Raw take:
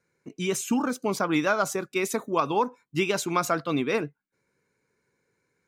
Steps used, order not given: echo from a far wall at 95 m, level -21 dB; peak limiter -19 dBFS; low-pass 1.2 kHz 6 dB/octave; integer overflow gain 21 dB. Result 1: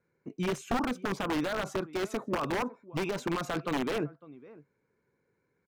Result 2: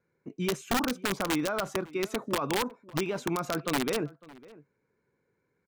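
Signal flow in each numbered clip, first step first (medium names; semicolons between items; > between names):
peak limiter > echo from a far wall > integer overflow > low-pass; peak limiter > low-pass > integer overflow > echo from a far wall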